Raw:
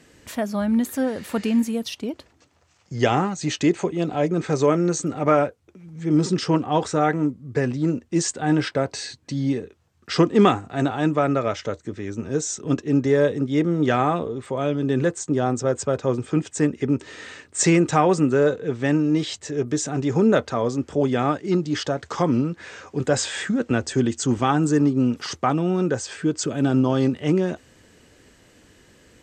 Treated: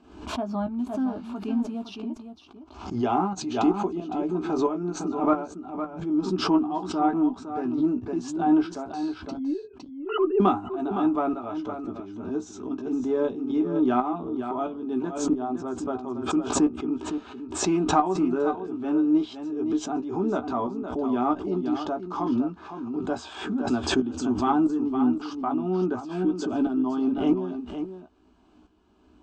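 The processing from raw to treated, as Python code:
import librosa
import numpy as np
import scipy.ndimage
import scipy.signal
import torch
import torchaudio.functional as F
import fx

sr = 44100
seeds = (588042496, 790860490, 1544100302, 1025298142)

y = fx.sine_speech(x, sr, at=(9.37, 10.4))
y = scipy.signal.sosfilt(scipy.signal.butter(2, 2200.0, 'lowpass', fs=sr, output='sos'), y)
y = fx.fixed_phaser(y, sr, hz=510.0, stages=6)
y = fx.tremolo_shape(y, sr, shape='saw_up', hz=1.5, depth_pct=70)
y = fx.cheby_harmonics(y, sr, harmonics=(4,), levels_db=(-36,), full_scale_db=-10.0)
y = fx.doubler(y, sr, ms=16.0, db=-7)
y = y + 10.0 ** (-9.5 / 20.0) * np.pad(y, (int(511 * sr / 1000.0), 0))[:len(y)]
y = fx.pre_swell(y, sr, db_per_s=82.0)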